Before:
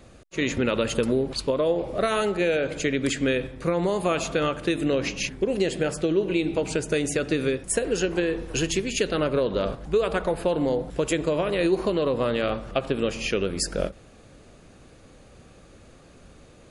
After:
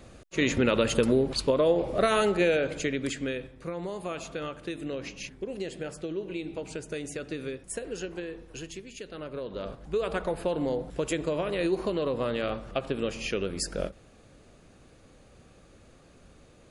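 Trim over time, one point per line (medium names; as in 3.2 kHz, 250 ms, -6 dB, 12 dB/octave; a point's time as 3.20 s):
2.41 s 0 dB
3.54 s -11 dB
8.01 s -11 dB
9.00 s -17.5 dB
10.10 s -5 dB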